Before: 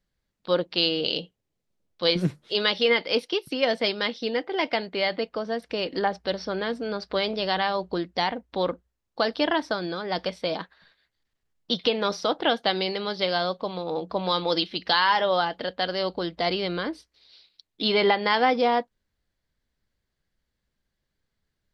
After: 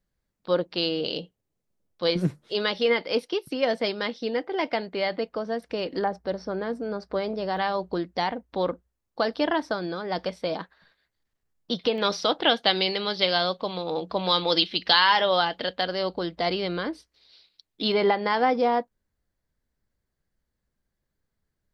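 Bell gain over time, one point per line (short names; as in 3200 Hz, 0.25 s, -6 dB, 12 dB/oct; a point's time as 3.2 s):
bell 3300 Hz 1.6 oct
-5.5 dB
from 6.04 s -14.5 dB
from 7.57 s -5 dB
from 11.98 s +5 dB
from 15.81 s -2 dB
from 17.92 s -8 dB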